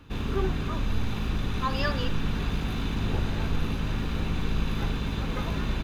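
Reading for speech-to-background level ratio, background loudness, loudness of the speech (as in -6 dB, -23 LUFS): -4.0 dB, -30.5 LUFS, -34.5 LUFS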